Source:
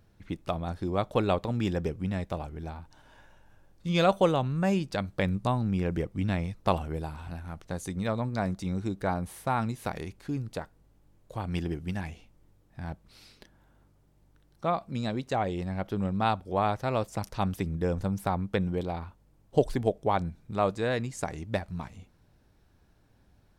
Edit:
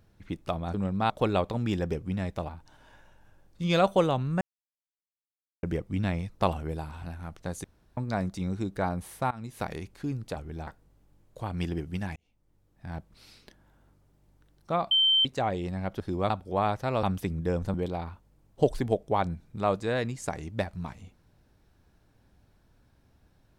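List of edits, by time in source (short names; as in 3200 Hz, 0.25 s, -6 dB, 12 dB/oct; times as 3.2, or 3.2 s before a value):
0.74–1.04 swap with 15.94–16.3
2.43–2.74 move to 10.61
4.66–5.88 mute
7.89–8.22 room tone
9.56–9.88 fade in, from -23 dB
12.1–12.91 fade in linear
14.85–15.19 bleep 3110 Hz -19 dBFS
17.03–17.39 cut
18.1–18.69 cut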